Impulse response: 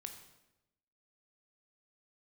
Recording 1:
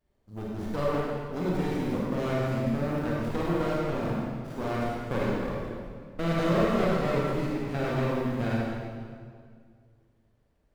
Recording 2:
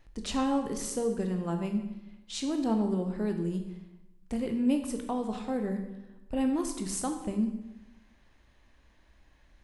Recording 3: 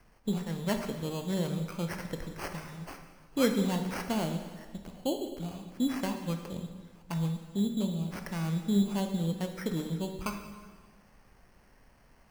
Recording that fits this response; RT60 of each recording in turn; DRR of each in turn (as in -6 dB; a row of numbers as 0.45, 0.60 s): 2; 2.0, 0.95, 1.6 s; -5.5, 5.0, 5.0 dB